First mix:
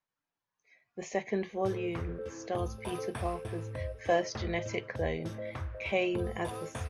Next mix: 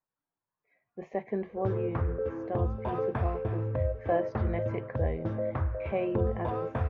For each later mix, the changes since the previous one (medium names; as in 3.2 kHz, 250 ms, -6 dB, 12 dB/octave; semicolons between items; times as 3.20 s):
background +8.5 dB; master: add low-pass 1.3 kHz 12 dB/octave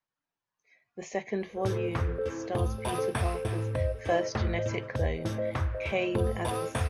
master: remove low-pass 1.3 kHz 12 dB/octave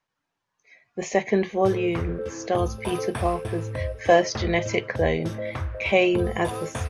speech +10.5 dB